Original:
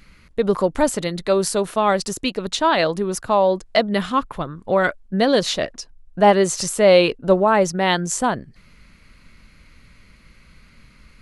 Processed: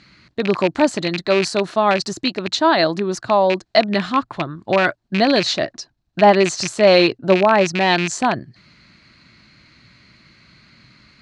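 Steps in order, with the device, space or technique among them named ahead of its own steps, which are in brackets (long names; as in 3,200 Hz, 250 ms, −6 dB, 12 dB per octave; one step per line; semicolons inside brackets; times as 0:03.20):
dynamic equaliser 3,300 Hz, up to −4 dB, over −38 dBFS, Q 1.2
car door speaker with a rattle (loose part that buzzes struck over −27 dBFS, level −14 dBFS; loudspeaker in its box 110–6,900 Hz, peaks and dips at 120 Hz +7 dB, 330 Hz +6 dB, 480 Hz −7 dB, 680 Hz +4 dB, 1,700 Hz +3 dB, 4,200 Hz +9 dB)
level +1 dB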